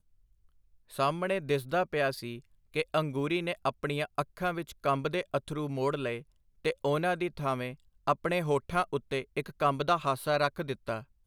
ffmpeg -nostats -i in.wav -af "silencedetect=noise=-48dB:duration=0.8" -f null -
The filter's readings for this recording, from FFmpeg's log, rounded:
silence_start: 0.00
silence_end: 0.90 | silence_duration: 0.90